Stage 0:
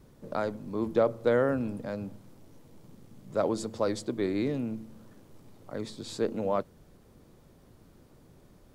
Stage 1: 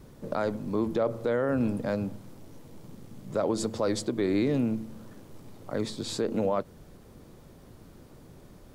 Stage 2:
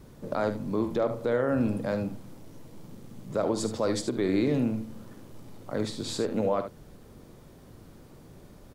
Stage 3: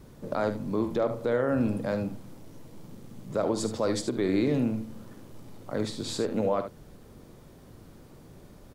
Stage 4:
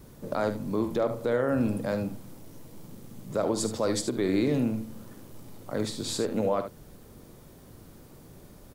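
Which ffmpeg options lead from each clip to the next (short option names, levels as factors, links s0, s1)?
-af "alimiter=limit=0.0668:level=0:latency=1:release=99,volume=2"
-af "aecho=1:1:47|74:0.224|0.316"
-af anull
-af "highshelf=f=8500:g=10"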